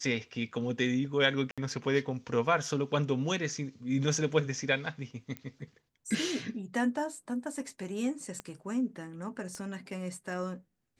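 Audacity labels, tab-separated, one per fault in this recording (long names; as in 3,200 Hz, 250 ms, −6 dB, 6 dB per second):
1.510000	1.580000	drop-out 66 ms
5.370000	5.370000	click −24 dBFS
8.400000	8.400000	click −24 dBFS
9.550000	9.550000	click −30 dBFS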